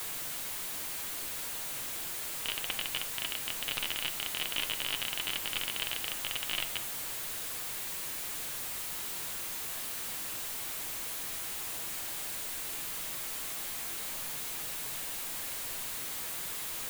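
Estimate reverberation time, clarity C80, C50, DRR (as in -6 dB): 0.50 s, 20.0 dB, 15.5 dB, 7.0 dB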